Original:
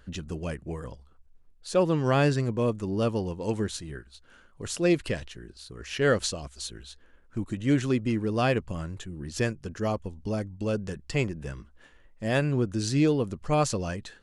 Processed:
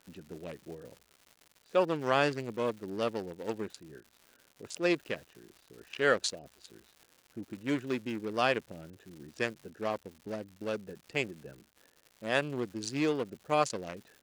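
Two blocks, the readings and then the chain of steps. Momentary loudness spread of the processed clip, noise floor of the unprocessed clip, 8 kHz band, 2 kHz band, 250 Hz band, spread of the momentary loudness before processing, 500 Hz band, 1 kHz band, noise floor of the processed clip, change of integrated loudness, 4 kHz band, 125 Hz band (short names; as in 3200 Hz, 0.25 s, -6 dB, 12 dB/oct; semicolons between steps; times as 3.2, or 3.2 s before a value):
20 LU, -57 dBFS, -7.0 dB, -1.0 dB, -8.5 dB, 15 LU, -4.5 dB, -1.5 dB, -67 dBFS, -4.5 dB, -3.0 dB, -15.5 dB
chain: Wiener smoothing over 41 samples; weighting filter A; crackle 240/s -45 dBFS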